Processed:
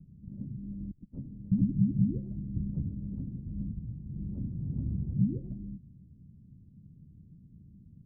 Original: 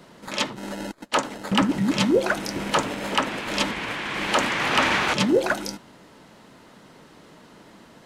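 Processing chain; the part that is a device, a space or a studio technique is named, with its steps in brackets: 3.50–4.09 s: peaking EQ 370 Hz -4.5 dB 1.3 oct; the neighbour's flat through the wall (low-pass 160 Hz 24 dB/octave; peaking EQ 81 Hz +7 dB 0.68 oct); trim +5 dB

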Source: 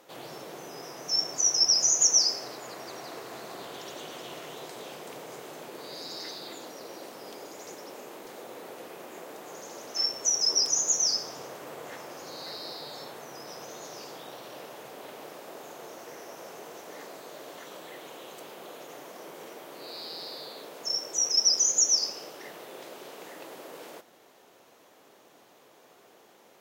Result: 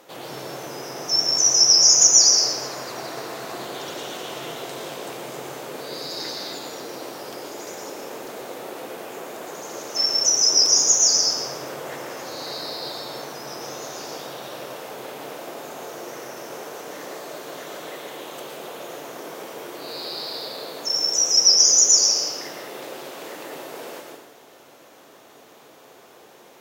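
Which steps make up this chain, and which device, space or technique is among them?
bathroom (reverberation RT60 0.90 s, pre-delay 110 ms, DRR 1 dB); trim +6 dB

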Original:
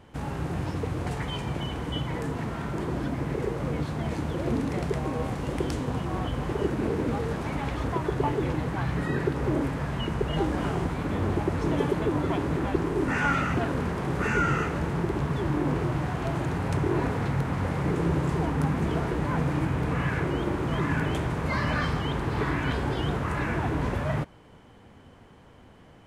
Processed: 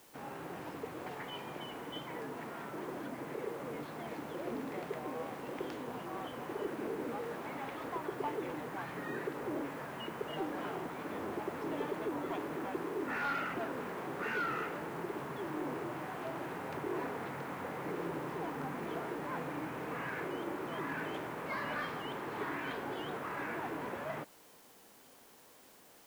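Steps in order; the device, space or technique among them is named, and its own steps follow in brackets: tape answering machine (band-pass 320–3300 Hz; saturation -21 dBFS, distortion -20 dB; wow and flutter; white noise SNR 22 dB); trim -7 dB

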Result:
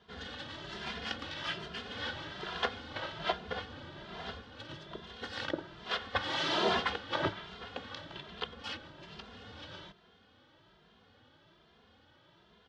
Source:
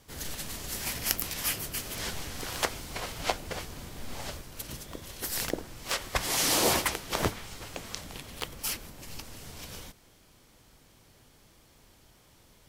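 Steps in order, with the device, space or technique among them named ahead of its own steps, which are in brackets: barber-pole flanger into a guitar amplifier (endless flanger 2.5 ms +1.2 Hz; saturation -20.5 dBFS, distortion -18 dB; cabinet simulation 97–3700 Hz, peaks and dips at 130 Hz -7 dB, 280 Hz -3 dB, 1.5 kHz +5 dB, 2.3 kHz -7 dB, 3.4 kHz +5 dB); trim +2 dB

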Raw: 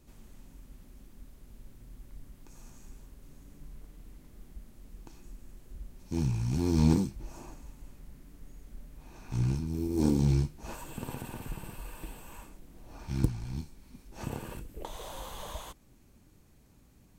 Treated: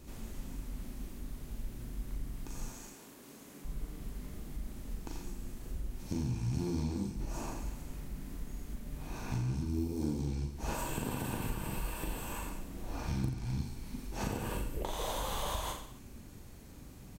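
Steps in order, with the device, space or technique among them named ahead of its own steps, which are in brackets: serial compression, peaks first (compression 6:1, threshold -35 dBFS, peak gain reduction 15.5 dB; compression 2:1, threshold -44 dBFS, peak gain reduction 7.5 dB); 2.68–3.65 s: high-pass 290 Hz 12 dB/octave; reverse bouncing-ball echo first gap 40 ms, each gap 1.15×, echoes 5; trim +7.5 dB

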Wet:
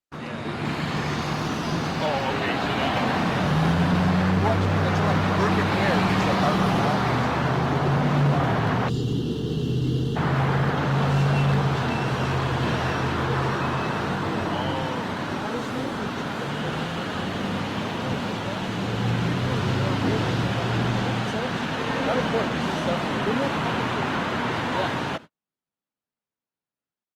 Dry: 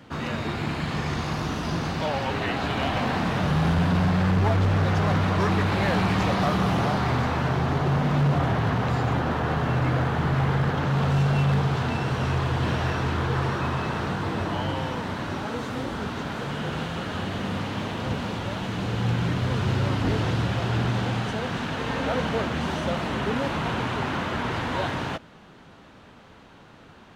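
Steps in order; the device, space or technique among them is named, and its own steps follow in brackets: time-frequency box 8.89–10.16 s, 480–2700 Hz -22 dB; video call (high-pass 120 Hz 12 dB/octave; level rider gain up to 5.5 dB; gate -34 dBFS, range -48 dB; trim -3 dB; Opus 32 kbps 48 kHz)

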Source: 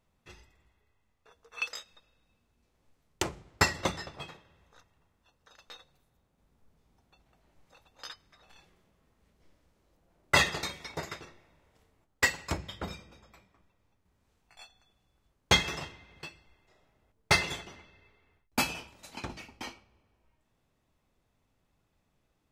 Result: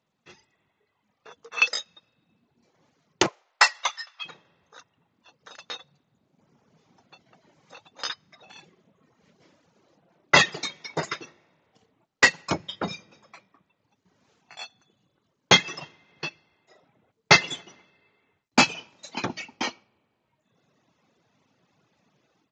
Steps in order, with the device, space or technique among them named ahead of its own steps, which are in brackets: reverb removal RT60 1.3 s; 3.26–4.24 s: high-pass 500 Hz -> 1.3 kHz 24 dB/octave; Bluetooth headset (high-pass 130 Hz 24 dB/octave; level rider gain up to 13 dB; resampled via 16 kHz; SBC 64 kbps 16 kHz)

